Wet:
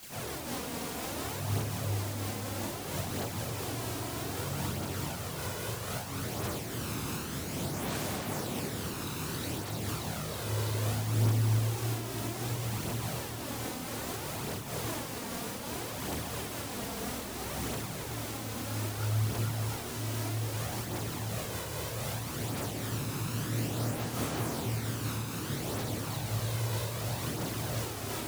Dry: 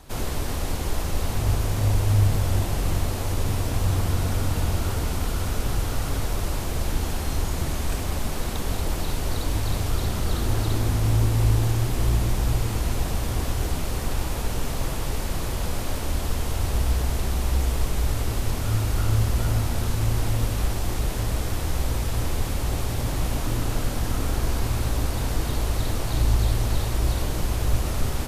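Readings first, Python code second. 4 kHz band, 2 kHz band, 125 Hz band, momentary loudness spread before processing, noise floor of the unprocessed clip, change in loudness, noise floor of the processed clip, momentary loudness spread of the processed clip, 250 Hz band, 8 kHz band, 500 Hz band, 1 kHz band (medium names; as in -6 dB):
-5.0 dB, -5.0 dB, -9.5 dB, 6 LU, -28 dBFS, -8.5 dB, -39 dBFS, 5 LU, -5.5 dB, -4.5 dB, -5.5 dB, -5.5 dB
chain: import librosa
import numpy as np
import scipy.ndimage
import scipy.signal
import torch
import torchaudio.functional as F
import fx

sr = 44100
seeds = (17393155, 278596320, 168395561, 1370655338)

p1 = scipy.signal.sosfilt(scipy.signal.butter(4, 110.0, 'highpass', fs=sr, output='sos'), x)
p2 = fx.schmitt(p1, sr, flips_db=-36.0)
p3 = p1 + (p2 * librosa.db_to_amplitude(-10.0))
p4 = fx.quant_dither(p3, sr, seeds[0], bits=6, dither='triangular')
p5 = fx.chorus_voices(p4, sr, voices=2, hz=0.31, base_ms=27, depth_ms=2.2, mix_pct=70)
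p6 = p5 + fx.echo_single(p5, sr, ms=273, db=-7.5, dry=0)
p7 = fx.am_noise(p6, sr, seeds[1], hz=5.7, depth_pct=60)
y = p7 * librosa.db_to_amplitude(-4.0)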